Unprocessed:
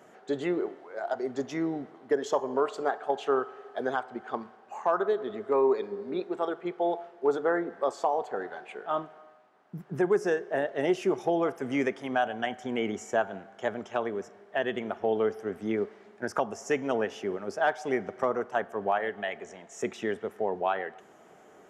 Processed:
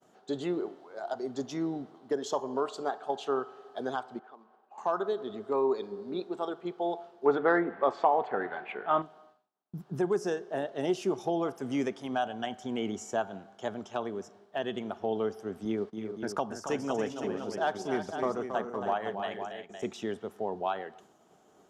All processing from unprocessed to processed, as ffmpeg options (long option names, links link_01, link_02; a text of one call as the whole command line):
ffmpeg -i in.wav -filter_complex "[0:a]asettb=1/sr,asplit=3[link_01][link_02][link_03];[link_01]atrim=end=4.194[link_04];[link_02]atrim=start=4.19:end=4.78,asetpts=PTS-STARTPTS,afade=type=in:duration=0.004:curve=qsin,afade=type=out:start_time=0.586:duration=0.004:curve=qsin,acompressor=threshold=-47dB:ratio=3:attack=3.2:release=140:knee=1:detection=peak,acrusher=bits=5:mode=log:mix=0:aa=0.000001,highpass=330,lowpass=2100[link_05];[link_03]atrim=start=4.776[link_06];[link_04][link_05]acrossfade=duration=0.004:curve1=hsin:curve2=qsin[link_07];[link_07][link_06]acrossfade=duration=0.004:curve1=qsin:curve2=hsin,asettb=1/sr,asplit=3[link_08][link_09][link_10];[link_08]atrim=end=7.264[link_11];[link_09]atrim=start=7.26:end=9.02,asetpts=PTS-STARTPTS,afade=type=in:duration=0.004:curve=qsin,afade=type=out:start_time=1.756:duration=0.004:curve=qsin,lowpass=frequency=2100:width_type=q:width=3.6,acontrast=24[link_12];[link_10]atrim=start=9.016[link_13];[link_11][link_12]acrossfade=duration=0.004:curve1=hsin:curve2=qsin[link_14];[link_14][link_13]acrossfade=duration=0.004:curve1=qsin:curve2=hsin,asettb=1/sr,asplit=3[link_15][link_16][link_17];[link_15]atrim=end=15.654[link_18];[link_16]atrim=start=15.65:end=19.86,asetpts=PTS-STARTPTS,afade=type=in:duration=0.004:curve=qsin,afade=type=out:start_time=4.206:duration=0.004:curve=qsin,agate=range=-20dB:threshold=-43dB:ratio=16:release=100:detection=peak,aecho=1:1:275|321|511:0.398|0.316|0.355,atrim=end_sample=185661[link_19];[link_17]atrim=start=19.856[link_20];[link_18][link_19]acrossfade=duration=0.004:curve1=hsin:curve2=qsin[link_21];[link_21][link_20]acrossfade=duration=0.004:curve1=qsin:curve2=hsin,agate=range=-33dB:threshold=-50dB:ratio=3:detection=peak,equalizer=frequency=500:width_type=o:width=1:gain=-5,equalizer=frequency=2000:width_type=o:width=1:gain=-11,equalizer=frequency=4000:width_type=o:width=1:gain=5" out.wav